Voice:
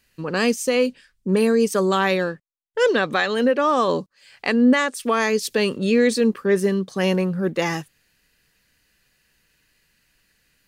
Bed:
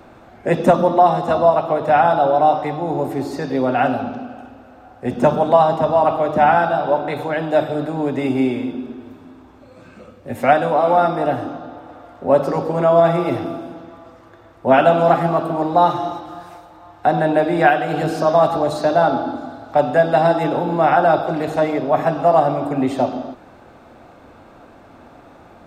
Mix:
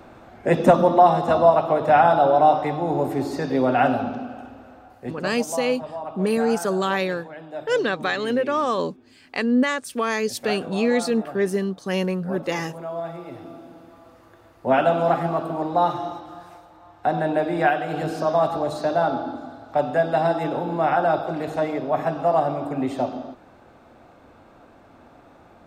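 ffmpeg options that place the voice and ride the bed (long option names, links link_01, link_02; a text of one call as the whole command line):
ffmpeg -i stem1.wav -i stem2.wav -filter_complex "[0:a]adelay=4900,volume=-3.5dB[link_01];[1:a]volume=10dB,afade=type=out:start_time=4.7:duration=0.52:silence=0.158489,afade=type=in:start_time=13.31:duration=0.91:silence=0.266073[link_02];[link_01][link_02]amix=inputs=2:normalize=0" out.wav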